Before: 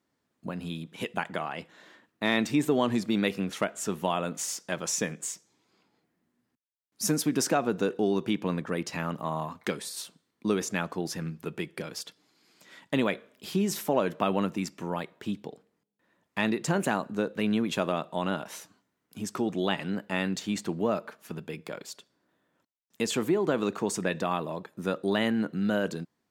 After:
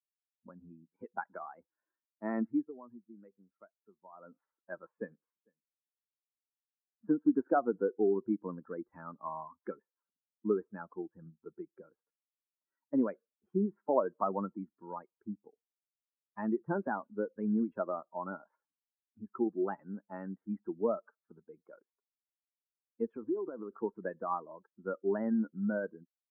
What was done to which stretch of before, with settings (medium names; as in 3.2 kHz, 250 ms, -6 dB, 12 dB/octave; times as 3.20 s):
2.40–4.43 s: dip -11.5 dB, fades 0.32 s linear
4.97–7.78 s: delay 450 ms -17 dB
10.71–13.09 s: treble shelf 2.8 kHz -8.5 dB
23.12–23.78 s: compression, threshold -26 dBFS
whole clip: expander on every frequency bin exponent 2; steep low-pass 1.5 kHz 48 dB/octave; resonant low shelf 180 Hz -11.5 dB, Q 1.5